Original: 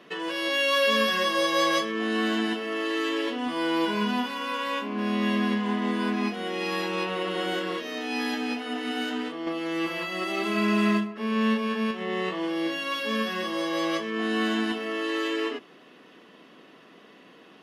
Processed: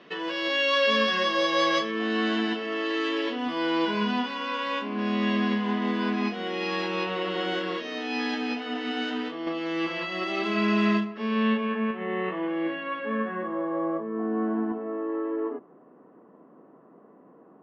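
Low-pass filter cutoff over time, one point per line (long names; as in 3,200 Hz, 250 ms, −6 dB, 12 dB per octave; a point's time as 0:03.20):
low-pass filter 24 dB per octave
0:11.21 5,500 Hz
0:11.80 2,400 Hz
0:12.75 2,400 Hz
0:13.99 1,100 Hz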